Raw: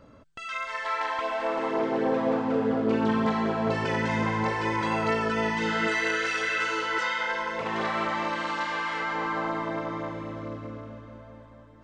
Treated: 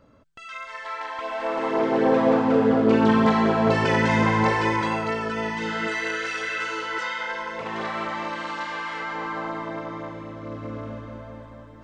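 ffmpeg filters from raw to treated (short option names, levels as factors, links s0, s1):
-af "volume=5.31,afade=t=in:st=1.12:d=1.04:silence=0.316228,afade=t=out:st=4.54:d=0.52:silence=0.421697,afade=t=in:st=10.4:d=0.49:silence=0.398107"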